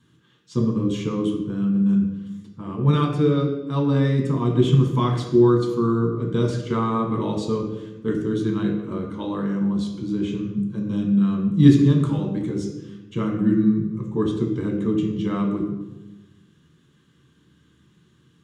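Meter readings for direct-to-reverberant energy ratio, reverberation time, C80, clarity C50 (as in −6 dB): −1.0 dB, 1.1 s, 7.5 dB, 5.5 dB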